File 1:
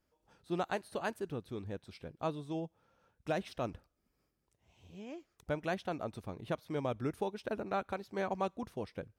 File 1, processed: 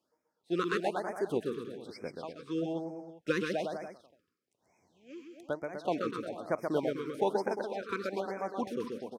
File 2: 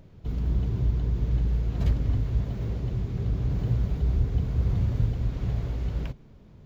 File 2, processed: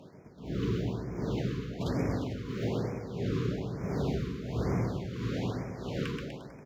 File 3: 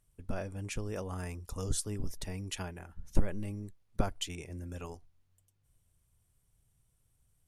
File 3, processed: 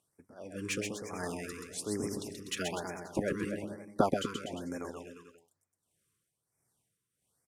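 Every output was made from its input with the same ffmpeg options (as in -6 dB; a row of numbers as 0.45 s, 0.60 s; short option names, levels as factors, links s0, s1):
-filter_complex "[0:a]agate=range=0.501:threshold=0.00251:ratio=16:detection=peak,highpass=250,highshelf=f=11000:g=-9.5,tremolo=f=1.5:d=0.95,acrossover=split=1100[s0][s1];[s1]asoftclip=type=tanh:threshold=0.0158[s2];[s0][s2]amix=inputs=2:normalize=0,aecho=1:1:130|247|352.3|447.1|532.4:0.631|0.398|0.251|0.158|0.1,afftfilt=real='re*(1-between(b*sr/1024,680*pow(3600/680,0.5+0.5*sin(2*PI*1.1*pts/sr))/1.41,680*pow(3600/680,0.5+0.5*sin(2*PI*1.1*pts/sr))*1.41))':imag='im*(1-between(b*sr/1024,680*pow(3600/680,0.5+0.5*sin(2*PI*1.1*pts/sr))/1.41,680*pow(3600/680,0.5+0.5*sin(2*PI*1.1*pts/sr))*1.41))':win_size=1024:overlap=0.75,volume=2.82"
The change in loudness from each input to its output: +4.0 LU, -6.0 LU, +2.5 LU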